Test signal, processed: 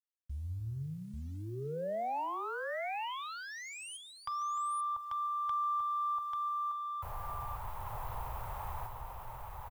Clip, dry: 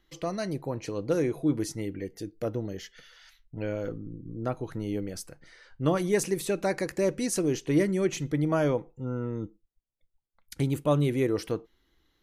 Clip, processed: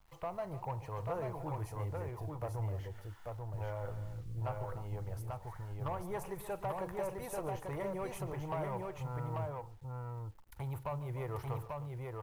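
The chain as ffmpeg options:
ffmpeg -i in.wav -filter_complex "[0:a]firequalizer=gain_entry='entry(110,0);entry(160,-15);entry(260,-28);entry(390,-16);entry(890,5);entry(1600,-14);entry(3000,-20);entry(4700,-28);entry(6600,-27);entry(14000,-10)':delay=0.05:min_phase=1,acrossover=split=540[link_01][link_02];[link_01]alimiter=level_in=15dB:limit=-24dB:level=0:latency=1:release=104,volume=-15dB[link_03];[link_02]acompressor=threshold=-41dB:ratio=20[link_04];[link_03][link_04]amix=inputs=2:normalize=0,asoftclip=type=tanh:threshold=-35dB,acrusher=bits=11:mix=0:aa=0.000001,asplit=2[link_05][link_06];[link_06]aecho=0:1:45|144|301|840:0.126|0.141|0.2|0.708[link_07];[link_05][link_07]amix=inputs=2:normalize=0,volume=4dB" out.wav

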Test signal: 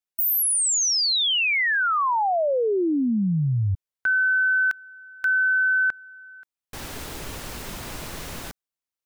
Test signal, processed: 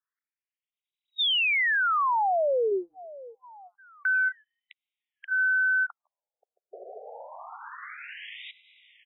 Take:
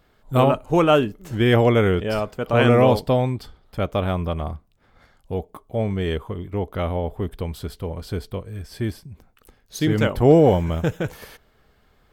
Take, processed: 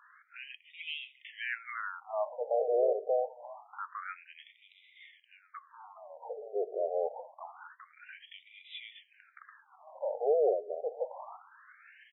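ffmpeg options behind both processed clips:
ffmpeg -i in.wav -filter_complex "[0:a]acompressor=threshold=-35dB:ratio=3:attack=0.16:release=183:knee=1:detection=peak,asplit=2[link_01][link_02];[link_02]aecho=0:1:672|1344|2016|2688:0.126|0.0655|0.034|0.0177[link_03];[link_01][link_03]amix=inputs=2:normalize=0,afftfilt=real='re*between(b*sr/1024,530*pow(2800/530,0.5+0.5*sin(2*PI*0.26*pts/sr))/1.41,530*pow(2800/530,0.5+0.5*sin(2*PI*0.26*pts/sr))*1.41)':imag='im*between(b*sr/1024,530*pow(2800/530,0.5+0.5*sin(2*PI*0.26*pts/sr))/1.41,530*pow(2800/530,0.5+0.5*sin(2*PI*0.26*pts/sr))*1.41)':win_size=1024:overlap=0.75,volume=8.5dB" out.wav

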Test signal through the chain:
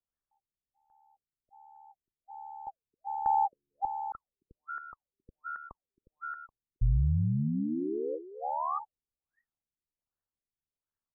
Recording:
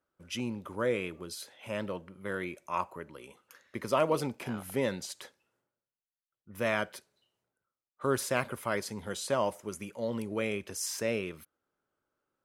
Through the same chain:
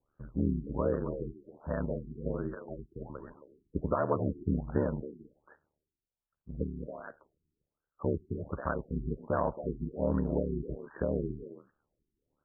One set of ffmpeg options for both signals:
ffmpeg -i in.wav -filter_complex "[0:a]aeval=exprs='val(0)*sin(2*PI*37*n/s)':channel_layout=same,lowpass=2600,equalizer=frequency=2000:width=0.51:gain=10.5,alimiter=limit=-19dB:level=0:latency=1:release=240,aemphasis=mode=reproduction:type=riaa,asplit=2[link_01][link_02];[link_02]adelay=270,highpass=300,lowpass=3400,asoftclip=type=hard:threshold=-23dB,volume=-9dB[link_03];[link_01][link_03]amix=inputs=2:normalize=0,afftfilt=real='re*lt(b*sr/1024,400*pow(1900/400,0.5+0.5*sin(2*PI*1.3*pts/sr)))':imag='im*lt(b*sr/1024,400*pow(1900/400,0.5+0.5*sin(2*PI*1.3*pts/sr)))':win_size=1024:overlap=0.75" out.wav

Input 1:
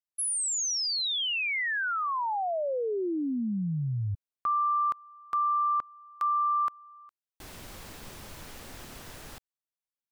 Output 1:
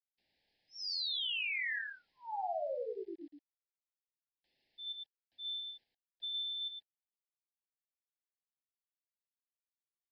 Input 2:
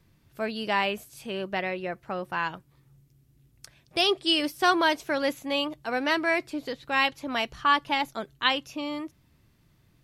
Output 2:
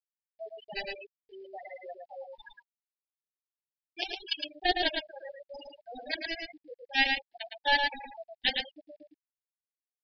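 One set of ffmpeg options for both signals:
ffmpeg -i in.wav -filter_complex "[0:a]aemphasis=mode=production:type=bsi,flanger=delay=16.5:depth=2.3:speed=0.23,highshelf=frequency=2700:gain=-7.5,acrossover=split=490|840[link_01][link_02][link_03];[link_01]acompressor=threshold=-50dB:ratio=4:attack=4.4:release=446:knee=6:detection=rms[link_04];[link_04][link_02][link_03]amix=inputs=3:normalize=0,aeval=exprs='0.266*(cos(1*acos(clip(val(0)/0.266,-1,1)))-cos(1*PI/2))+0.00422*(cos(5*acos(clip(val(0)/0.266,-1,1)))-cos(5*PI/2))+0.0596*(cos(7*acos(clip(val(0)/0.266,-1,1)))-cos(7*PI/2))':channel_layout=same,aeval=exprs='val(0)+0.000501*sin(2*PI*1200*n/s)':channel_layout=same,asplit=2[link_05][link_06];[link_06]asoftclip=type=tanh:threshold=-28dB,volume=-5dB[link_07];[link_05][link_07]amix=inputs=2:normalize=0,afftfilt=real='re*gte(hypot(re,im),0.0501)':imag='im*gte(hypot(re,im),0.0501)':win_size=1024:overlap=0.75,acrusher=bits=11:mix=0:aa=0.000001,asuperstop=centerf=1200:order=12:qfactor=1.6,aecho=1:1:111:0.596,aresample=11025,aresample=44100,volume=2dB" out.wav

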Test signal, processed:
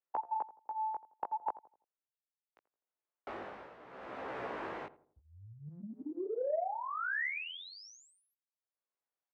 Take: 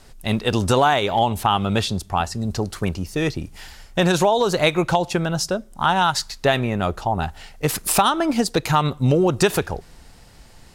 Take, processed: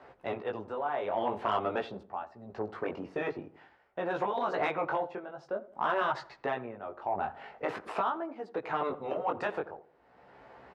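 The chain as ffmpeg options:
ffmpeg -i in.wav -filter_complex "[0:a]tremolo=f=0.66:d=0.87,flanger=delay=15:depth=6.2:speed=0.48,afftfilt=real='re*lt(hypot(re,im),0.355)':imag='im*lt(hypot(re,im),0.355)':win_size=1024:overlap=0.75,lowpass=3200,equalizer=frequency=560:width=0.38:gain=7,asplit=2[link_01][link_02];[link_02]acompressor=threshold=-39dB:ratio=6,volume=-0.5dB[link_03];[link_01][link_03]amix=inputs=2:normalize=0,asoftclip=type=tanh:threshold=-13.5dB,highpass=81,acrossover=split=330 2300:gain=0.224 1 0.2[link_04][link_05][link_06];[link_04][link_05][link_06]amix=inputs=3:normalize=0,asplit=2[link_07][link_08];[link_08]adelay=84,lowpass=frequency=900:poles=1,volume=-15dB,asplit=2[link_09][link_10];[link_10]adelay=84,lowpass=frequency=900:poles=1,volume=0.44,asplit=2[link_11][link_12];[link_12]adelay=84,lowpass=frequency=900:poles=1,volume=0.44,asplit=2[link_13][link_14];[link_14]adelay=84,lowpass=frequency=900:poles=1,volume=0.44[link_15];[link_07][link_09][link_11][link_13][link_15]amix=inputs=5:normalize=0,volume=-5dB" out.wav

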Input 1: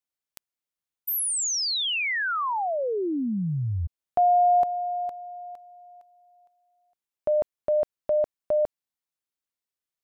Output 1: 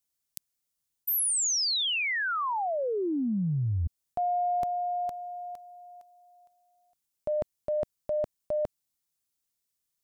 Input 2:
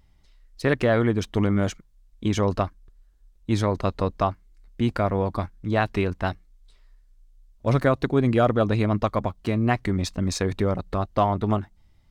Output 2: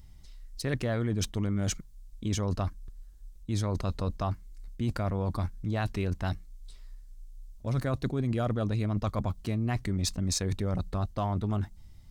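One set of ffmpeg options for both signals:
ffmpeg -i in.wav -af "bass=frequency=250:gain=8,treble=frequency=4000:gain=10,areverse,acompressor=threshold=-27dB:ratio=6:attack=7:release=60:knee=6:detection=rms,areverse" out.wav

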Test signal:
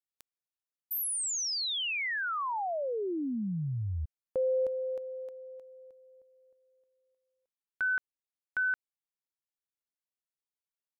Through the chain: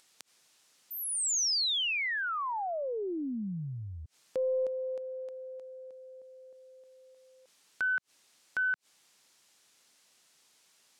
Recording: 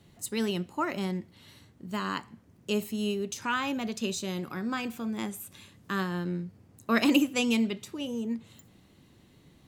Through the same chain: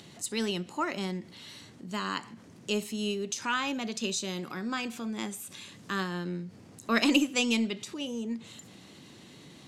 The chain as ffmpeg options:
ffmpeg -i in.wav -filter_complex "[0:a]highpass=150,lowpass=7300,highshelf=frequency=3500:gain=9,asplit=2[link_01][link_02];[link_02]acompressor=mode=upward:threshold=-32dB:ratio=2.5:attack=2.3:release=63:knee=2.83:detection=peak,volume=1dB[link_03];[link_01][link_03]amix=inputs=2:normalize=0,aeval=exprs='0.944*(cos(1*acos(clip(val(0)/0.944,-1,1)))-cos(1*PI/2))+0.00596*(cos(8*acos(clip(val(0)/0.944,-1,1)))-cos(8*PI/2))':channel_layout=same,volume=-8dB" out.wav

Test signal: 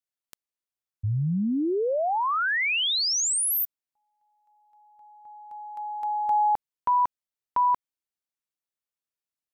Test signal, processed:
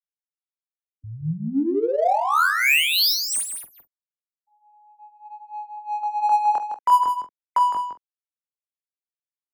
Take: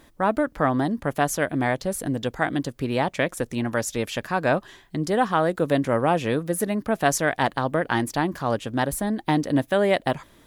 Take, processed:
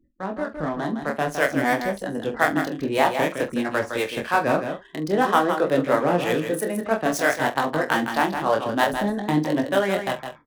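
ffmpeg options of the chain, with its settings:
ffmpeg -i in.wav -filter_complex "[0:a]afftfilt=real='re*gte(hypot(re,im),0.00631)':imag='im*gte(hypot(re,im),0.00631)':win_size=1024:overlap=0.75,bandreject=frequency=7100:width=9.6,flanger=delay=19.5:depth=8:speed=0.52,acrossover=split=230|3900[link_01][link_02][link_03];[link_02]dynaudnorm=framelen=280:gausssize=7:maxgain=10.5dB[link_04];[link_01][link_04][link_03]amix=inputs=3:normalize=0,acrossover=split=430[link_05][link_06];[link_05]aeval=exprs='val(0)*(1-0.7/2+0.7/2*cos(2*PI*3.1*n/s))':channel_layout=same[link_07];[link_06]aeval=exprs='val(0)*(1-0.7/2-0.7/2*cos(2*PI*3.1*n/s))':channel_layout=same[link_08];[link_07][link_08]amix=inputs=2:normalize=0,adynamicsmooth=sensitivity=6.5:basefreq=3100,aemphasis=mode=production:type=50fm,asplit=2[link_09][link_10];[link_10]adelay=45,volume=-13dB[link_11];[link_09][link_11]amix=inputs=2:normalize=0,aecho=1:1:161:0.422" out.wav

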